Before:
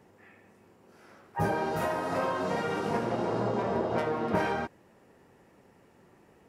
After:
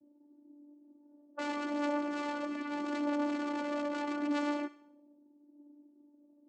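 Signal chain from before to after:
low-pass that shuts in the quiet parts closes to 340 Hz, open at −30 dBFS
time-frequency box erased 0:02.45–0:02.70, 420–1,100 Hz
low-pass that shuts in the quiet parts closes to 330 Hz, open at −27.5 dBFS
in parallel at −2.5 dB: downward compressor 12 to 1, threshold −41 dBFS, peak gain reduction 18.5 dB
on the sum: wrap-around overflow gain 23 dB
channel vocoder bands 8, saw 292 Hz
flanger 0.79 Hz, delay 1.5 ms, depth 2.1 ms, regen +59%
on a send: feedback echo with a high-pass in the loop 66 ms, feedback 48%, high-pass 1,100 Hz, level −13.5 dB

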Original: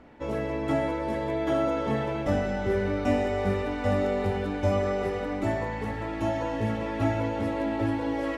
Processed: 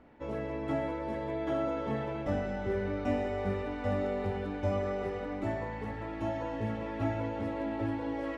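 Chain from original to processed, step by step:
high-shelf EQ 5,300 Hz −10 dB
level −6 dB

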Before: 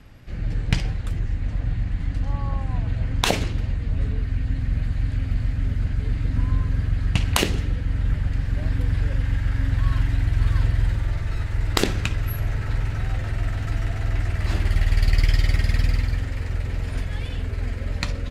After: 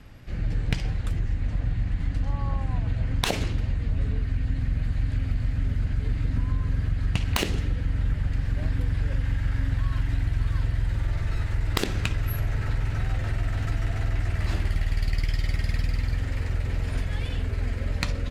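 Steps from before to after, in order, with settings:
stylus tracing distortion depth 0.06 ms
downward compressor, threshold −20 dBFS, peak gain reduction 8.5 dB

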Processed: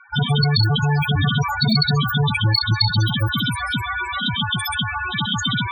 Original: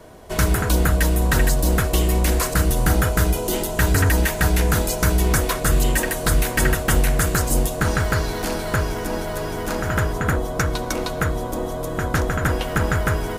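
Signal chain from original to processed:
tilt shelving filter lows −7 dB, about 710 Hz
in parallel at −4.5 dB: bit reduction 6 bits
on the sum: wrong playback speed 33 rpm record played at 78 rpm
spectral peaks only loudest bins 8
level +3.5 dB

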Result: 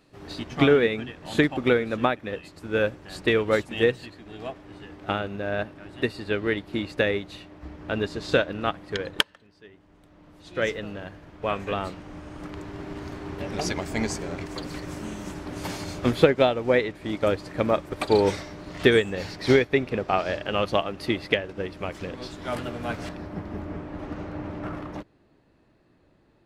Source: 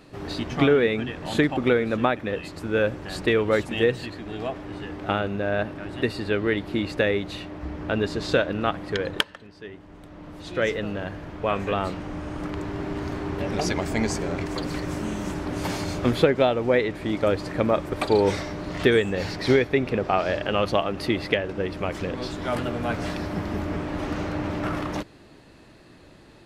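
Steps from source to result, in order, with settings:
high-shelf EQ 2,600 Hz +3.5 dB, from 0:23.09 −10.5 dB
expander for the loud parts 1.5 to 1, over −39 dBFS
level +2 dB

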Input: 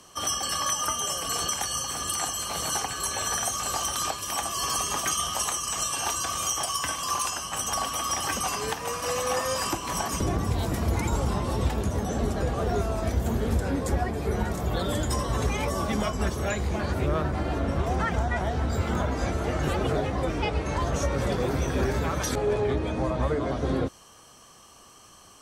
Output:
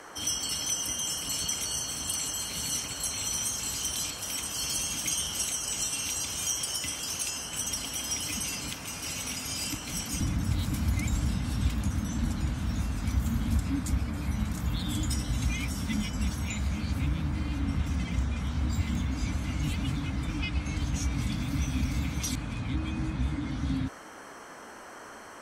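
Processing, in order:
brick-wall band-stop 320–2,000 Hz
noise in a band 210–1,700 Hz −45 dBFS
level −1.5 dB

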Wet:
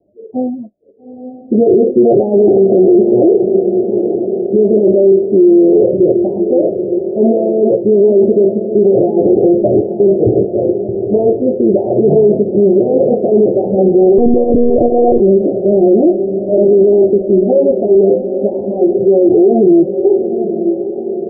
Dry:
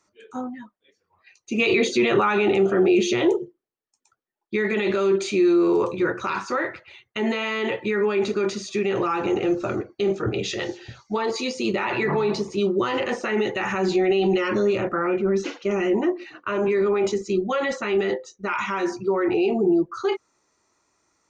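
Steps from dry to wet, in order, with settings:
Butterworth low-pass 700 Hz 96 dB per octave
low-shelf EQ 470 Hz −8 dB
on a send: feedback delay with all-pass diffusion 871 ms, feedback 56%, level −10.5 dB
0:14.18–0:15.20: on the sum: one-pitch LPC vocoder at 8 kHz 240 Hz
boost into a limiter +21.5 dB
level −1 dB

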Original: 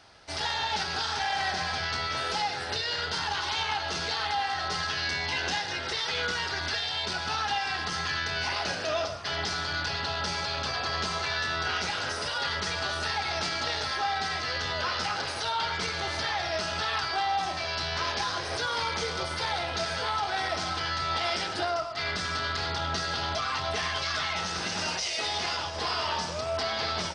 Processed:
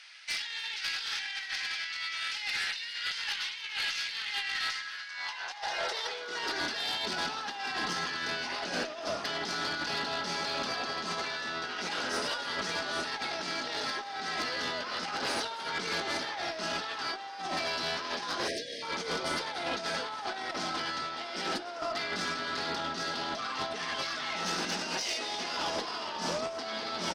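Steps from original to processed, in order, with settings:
high-pass filter sweep 2,200 Hz → 240 Hz, 0:04.66–0:06.68
compressor whose output falls as the input rises −33 dBFS, ratio −0.5
harmonic generator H 4 −23 dB, 5 −16 dB, 7 −30 dB, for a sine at −17 dBFS
on a send: echo with shifted repeats 288 ms, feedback 50%, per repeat +150 Hz, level −16 dB
on the sum: time-frequency box erased 0:18.48–0:18.82, 690–1,600 Hz
level −4.5 dB

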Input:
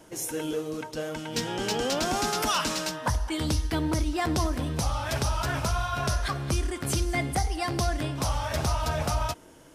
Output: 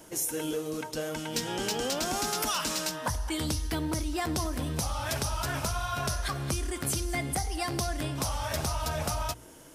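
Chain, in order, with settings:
high-shelf EQ 7,200 Hz +10 dB
mains-hum notches 60/120 Hz
downward compressor 2.5 to 1, threshold −29 dBFS, peak gain reduction 6 dB

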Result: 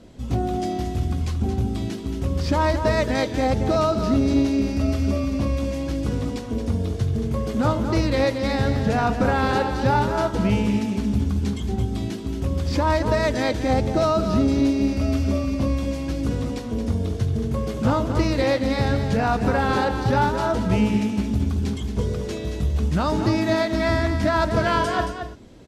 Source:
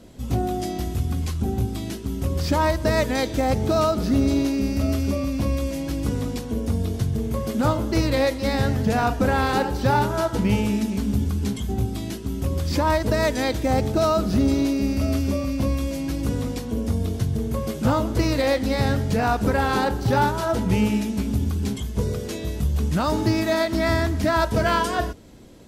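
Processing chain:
high-frequency loss of the air 51 metres
single-tap delay 225 ms −8 dB

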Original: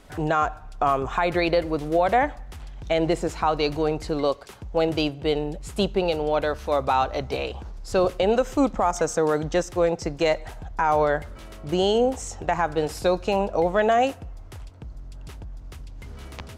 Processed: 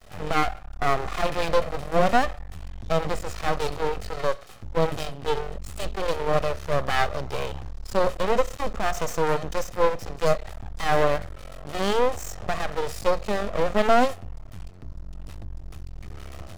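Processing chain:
lower of the sound and its delayed copy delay 1.6 ms
half-wave rectification
harmonic and percussive parts rebalanced harmonic +7 dB

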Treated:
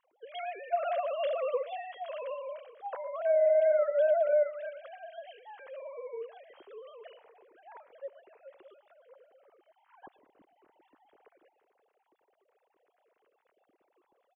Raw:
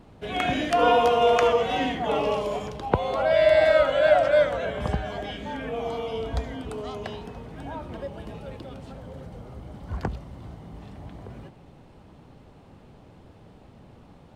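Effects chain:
three sine waves on the formant tracks
brickwall limiter −15.5 dBFS, peak gain reduction 11 dB
single-tap delay 115 ms −20.5 dB
level −4 dB

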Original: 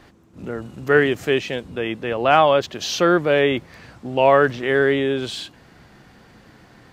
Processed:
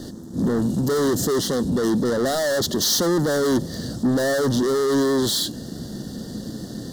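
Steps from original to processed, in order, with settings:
flat-topped bell 1,300 Hz −14 dB
soft clipping −22.5 dBFS, distortion −7 dB
leveller curve on the samples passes 3
Butterworth band-reject 2,500 Hz, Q 1.1
high-shelf EQ 2,100 Hz +8 dB
hollow resonant body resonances 220/1,800/2,800 Hz, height 10 dB, ringing for 20 ms

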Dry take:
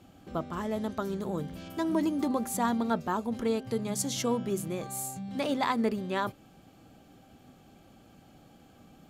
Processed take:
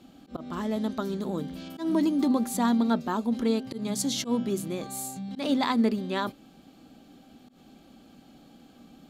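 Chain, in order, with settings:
graphic EQ with 15 bands 100 Hz −10 dB, 250 Hz +8 dB, 4,000 Hz +7 dB
volume swells 108 ms

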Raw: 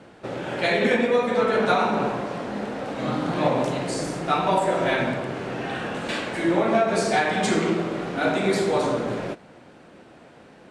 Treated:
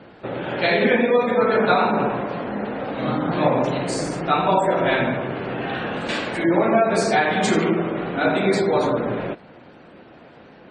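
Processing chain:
gate on every frequency bin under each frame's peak −30 dB strong
level +3 dB

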